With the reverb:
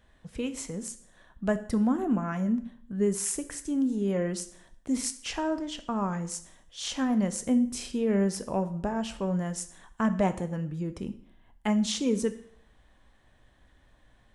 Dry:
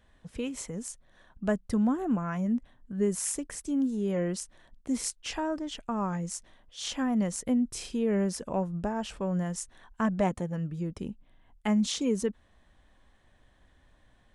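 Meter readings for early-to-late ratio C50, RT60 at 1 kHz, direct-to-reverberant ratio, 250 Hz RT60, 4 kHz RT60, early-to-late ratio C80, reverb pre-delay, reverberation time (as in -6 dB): 14.0 dB, 0.60 s, 10.0 dB, 0.60 s, 0.55 s, 17.5 dB, 6 ms, 0.60 s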